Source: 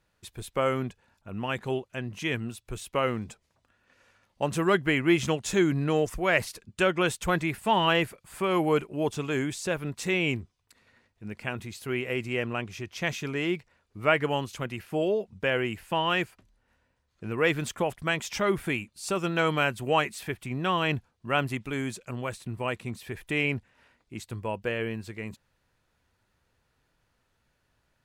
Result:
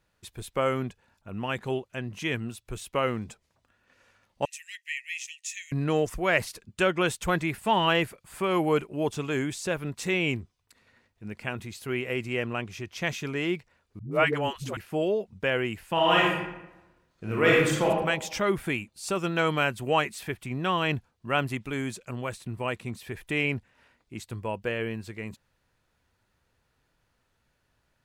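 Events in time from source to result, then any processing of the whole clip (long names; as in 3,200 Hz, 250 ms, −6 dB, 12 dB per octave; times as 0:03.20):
0:04.45–0:05.72: Chebyshev high-pass with heavy ripple 1,800 Hz, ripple 9 dB
0:13.99–0:14.77: all-pass dispersion highs, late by 125 ms, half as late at 320 Hz
0:15.93–0:17.87: thrown reverb, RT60 0.99 s, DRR −4 dB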